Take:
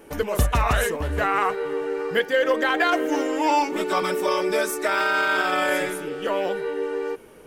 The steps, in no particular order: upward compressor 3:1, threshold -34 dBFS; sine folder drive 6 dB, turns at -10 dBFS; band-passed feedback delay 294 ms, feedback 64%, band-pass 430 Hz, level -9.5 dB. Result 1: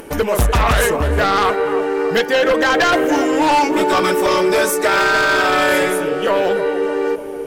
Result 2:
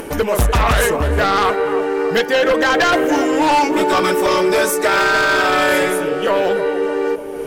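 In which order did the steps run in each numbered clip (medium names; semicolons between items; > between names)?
band-passed feedback delay > sine folder > upward compressor; upward compressor > band-passed feedback delay > sine folder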